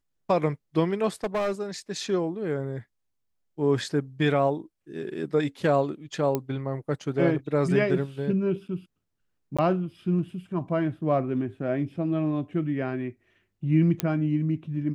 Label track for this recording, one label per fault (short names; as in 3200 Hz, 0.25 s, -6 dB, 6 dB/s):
1.240000	1.620000	clipped -22.5 dBFS
6.350000	6.350000	pop -13 dBFS
9.570000	9.590000	gap 16 ms
14.000000	14.000000	pop -9 dBFS